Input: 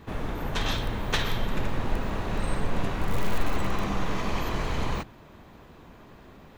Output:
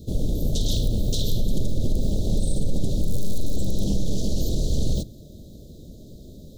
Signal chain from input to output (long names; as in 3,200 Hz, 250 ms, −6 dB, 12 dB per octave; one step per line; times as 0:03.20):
low-shelf EQ 99 Hz +3 dB
brickwall limiter −19 dBFS, peak gain reduction 9.5 dB
Chebyshev band-stop filter 600–3,700 Hz, order 4
bass and treble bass +5 dB, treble +10 dB
highs frequency-modulated by the lows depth 0.35 ms
level +3.5 dB